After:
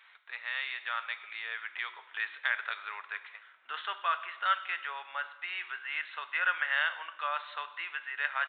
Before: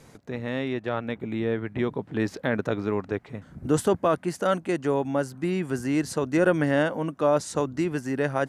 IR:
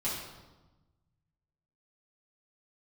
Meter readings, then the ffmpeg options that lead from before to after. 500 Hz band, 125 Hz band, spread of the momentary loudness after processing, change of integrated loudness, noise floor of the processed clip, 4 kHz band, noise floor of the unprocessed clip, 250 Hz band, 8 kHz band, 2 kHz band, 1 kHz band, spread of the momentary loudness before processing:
-26.5 dB, under -40 dB, 10 LU, -7.5 dB, -58 dBFS, +2.0 dB, -52 dBFS, under -40 dB, under -40 dB, +2.5 dB, -3.0 dB, 8 LU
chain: -filter_complex "[0:a]highpass=f=1.3k:w=0.5412,highpass=f=1.3k:w=1.3066,asplit=2[a][b];[1:a]atrim=start_sample=2205,highshelf=f=5.6k:g=10[c];[b][c]afir=irnorm=-1:irlink=0,volume=-14dB[d];[a][d]amix=inputs=2:normalize=0,aresample=8000,aresample=44100,volume=2dB"

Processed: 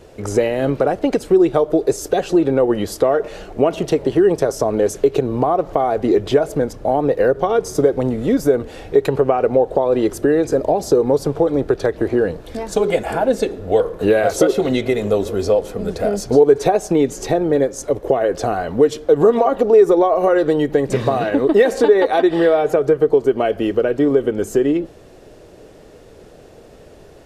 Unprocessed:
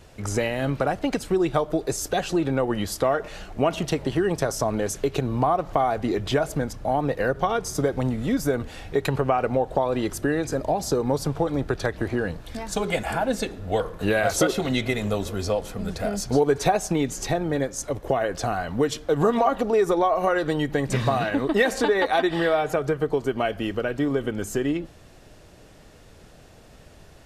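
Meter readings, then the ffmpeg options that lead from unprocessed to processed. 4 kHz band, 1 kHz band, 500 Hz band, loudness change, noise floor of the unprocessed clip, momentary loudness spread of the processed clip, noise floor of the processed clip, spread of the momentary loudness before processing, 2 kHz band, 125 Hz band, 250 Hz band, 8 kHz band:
+0.5 dB, +3.5 dB, +9.5 dB, +7.5 dB, -49 dBFS, 6 LU, -43 dBFS, 6 LU, +0.5 dB, +1.5 dB, +7.0 dB, +0.5 dB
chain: -filter_complex "[0:a]equalizer=f=430:t=o:w=1.3:g=12,asplit=2[a][b];[b]alimiter=limit=-8.5dB:level=0:latency=1:release=310,volume=0.5dB[c];[a][c]amix=inputs=2:normalize=0,volume=-5dB"

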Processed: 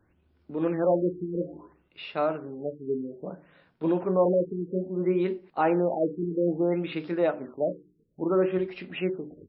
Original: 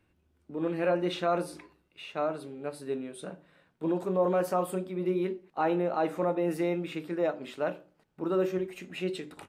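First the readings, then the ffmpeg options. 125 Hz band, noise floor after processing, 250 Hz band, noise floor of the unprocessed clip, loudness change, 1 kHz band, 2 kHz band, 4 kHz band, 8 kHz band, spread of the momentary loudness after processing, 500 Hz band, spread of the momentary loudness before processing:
+4.0 dB, -68 dBFS, +4.0 dB, -71 dBFS, +3.0 dB, +0.5 dB, 0.0 dB, n/a, under -30 dB, 12 LU, +3.5 dB, 12 LU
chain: -af "afftfilt=real='re*lt(b*sr/1024,440*pow(5600/440,0.5+0.5*sin(2*PI*0.6*pts/sr)))':imag='im*lt(b*sr/1024,440*pow(5600/440,0.5+0.5*sin(2*PI*0.6*pts/sr)))':win_size=1024:overlap=0.75,volume=4dB"

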